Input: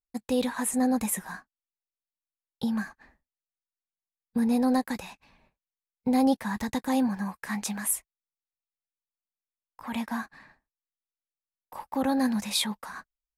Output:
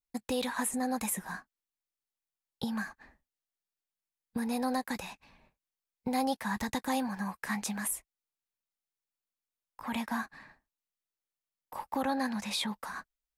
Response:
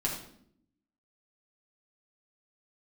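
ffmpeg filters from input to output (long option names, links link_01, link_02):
-filter_complex "[0:a]asettb=1/sr,asplit=3[link_01][link_02][link_03];[link_01]atrim=end=12.044[link_04];[link_02]atrim=start=12.04:end=12.68,asetpts=PTS-STARTPTS,afade=type=in:duration=0.004:curve=qsin,afade=type=out:start_time=0.636:duration=0.004:curve=qsin,highshelf=frequency=8000:gain=-11[link_05];[link_03]atrim=start=12.676[link_06];[link_04][link_05]acrossfade=duration=0.004:curve1=hsin:curve2=qsin[link_07];[link_07][link_06]acrossfade=duration=0.004:curve1=qsin:curve2=hsin,acrossover=split=640[link_08][link_09];[link_08]acompressor=threshold=-33dB:ratio=6[link_10];[link_09]alimiter=limit=-22dB:level=0:latency=1:release=235[link_11];[link_10][link_11]amix=inputs=2:normalize=0"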